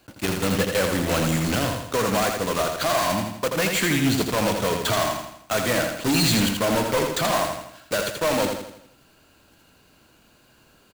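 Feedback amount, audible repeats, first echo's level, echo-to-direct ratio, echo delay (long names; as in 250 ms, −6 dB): 47%, 5, −5.0 dB, −4.0 dB, 82 ms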